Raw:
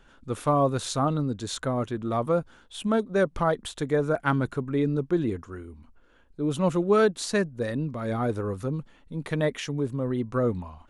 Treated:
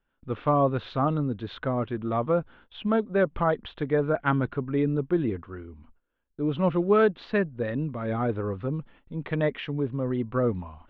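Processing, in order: steep low-pass 3.3 kHz 36 dB/octave; gate with hold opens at -45 dBFS

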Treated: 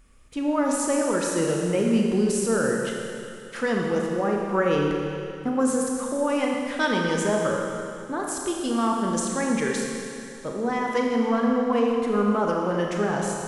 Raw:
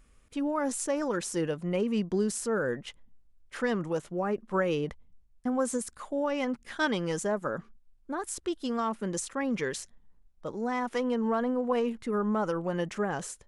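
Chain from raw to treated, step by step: Schroeder reverb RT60 2.6 s, combs from 27 ms, DRR -0.5 dB; trim +3.5 dB

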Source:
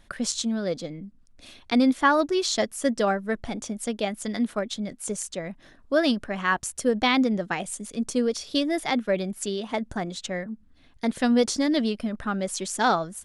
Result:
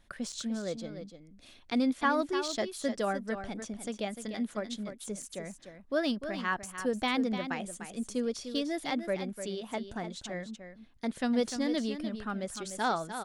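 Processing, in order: de-esser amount 55%; on a send: delay 299 ms -9.5 dB; on the sum: trim -8 dB

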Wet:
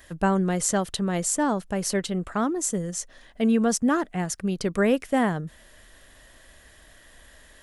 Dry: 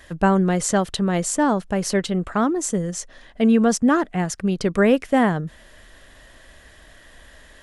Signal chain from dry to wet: treble shelf 8.7 kHz +11 dB; trim -5 dB

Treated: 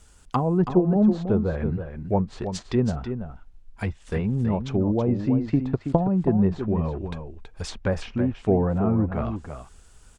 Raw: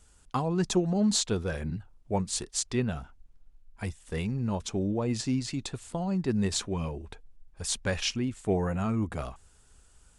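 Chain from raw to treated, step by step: median filter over 3 samples; 5.47–6.07 s: transient shaper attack +9 dB, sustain -4 dB; low-pass that closes with the level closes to 940 Hz, closed at -26.5 dBFS; on a send: delay 326 ms -8.5 dB; on the sum: trim +6.5 dB

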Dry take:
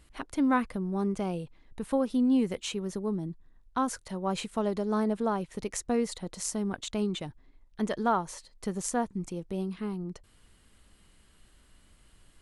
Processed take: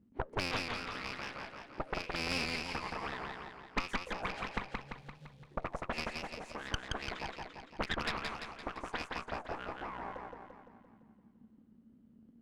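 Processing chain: cycle switcher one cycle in 3, inverted; 4.58–5.45 s: elliptic band-stop 150–3400 Hz; in parallel at 0 dB: compression 6:1, threshold -36 dBFS, peak gain reduction 14.5 dB; on the sum: flange 2 Hz, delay 8.5 ms, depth 4.5 ms, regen +85%; auto-wah 200–2500 Hz, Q 8, up, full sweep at -27 dBFS; Chebyshev shaper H 6 -6 dB, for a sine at -25 dBFS; saturation -30 dBFS, distortion -14 dB; modulated delay 171 ms, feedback 55%, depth 100 cents, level -3 dB; trim +9.5 dB

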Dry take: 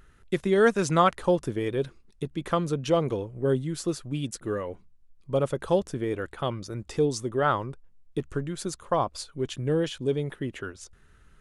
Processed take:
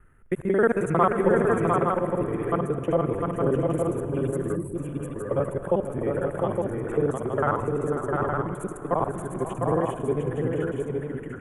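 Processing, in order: time reversed locally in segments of 45 ms; multi-tap echo 495/703/864 ms -11.5/-4/-5 dB; reverberation RT60 4.2 s, pre-delay 105 ms, DRR 11 dB; time-frequency box 4.56–4.76 s, 410–7700 Hz -15 dB; Butterworth band-stop 4.7 kHz, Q 0.6

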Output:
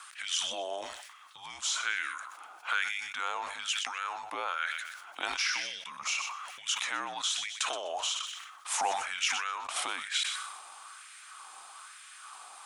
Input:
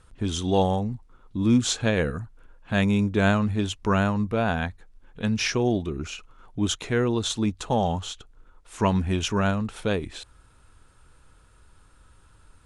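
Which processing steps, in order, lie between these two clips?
high-pass 130 Hz 12 dB/octave; treble shelf 2.2 kHz +9 dB; in parallel at +2 dB: peak limiter -20 dBFS, peak gain reduction 17 dB; on the sum: compression 12:1, threshold -29 dBFS, peak gain reduction 17.5 dB; frequency shift -170 Hz; thinning echo 125 ms, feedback 34%, high-pass 550 Hz, level -16 dB; LFO high-pass sine 1.1 Hz 760–1900 Hz; decay stretcher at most 45 dB/s

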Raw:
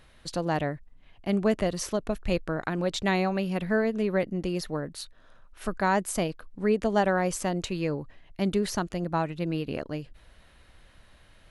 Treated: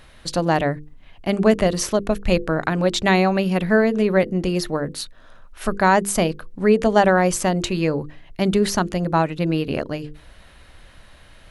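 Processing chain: hum notches 50/100/150/200/250/300/350/400/450/500 Hz; trim +9 dB

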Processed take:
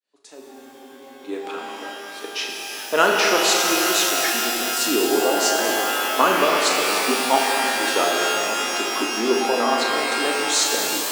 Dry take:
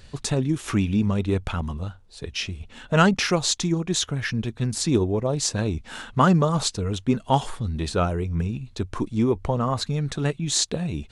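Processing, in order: fade-in on the opening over 2.64 s; steep high-pass 280 Hz 36 dB/octave; on a send: flutter echo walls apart 6.4 m, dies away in 0.26 s; on the sum: spectral freeze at 0.45 s, 0.80 s; pitch-shifted reverb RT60 3.8 s, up +12 st, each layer -2 dB, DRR 0.5 dB; trim +1.5 dB

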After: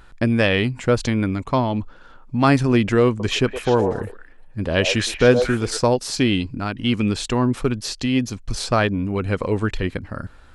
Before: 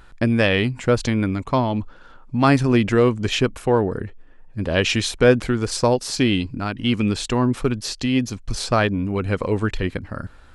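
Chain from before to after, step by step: 3.08–5.79 s: repeats whose band climbs or falls 116 ms, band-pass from 650 Hz, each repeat 1.4 oct, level -3.5 dB

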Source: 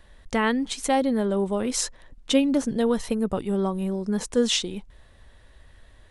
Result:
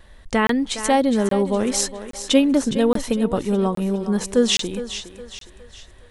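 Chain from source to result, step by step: wow and flutter 24 cents; thinning echo 413 ms, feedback 45%, high-pass 310 Hz, level -11 dB; crackling interface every 0.82 s, samples 1024, zero, from 0.47 s; trim +4.5 dB

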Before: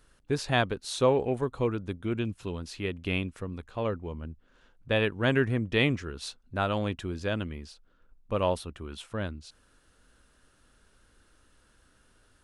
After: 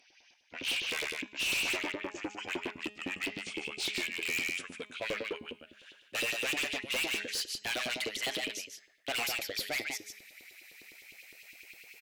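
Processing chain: gliding tape speed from 55% -> 152%; in parallel at -8.5 dB: sine folder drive 16 dB, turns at -10.5 dBFS; on the sum: fifteen-band graphic EQ 160 Hz -6 dB, 400 Hz -5 dB, 1 kHz -6 dB, 2.5 kHz +11 dB; on a send: delay 148 ms -7 dB; on the sum: LFO high-pass saw up 9.8 Hz 340–3900 Hz; gain riding within 4 dB 2 s; peaking EQ 1 kHz -11 dB 2.4 oct; de-hum 208.4 Hz, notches 38; hard clipper -23 dBFS, distortion -5 dB; trim -6.5 dB

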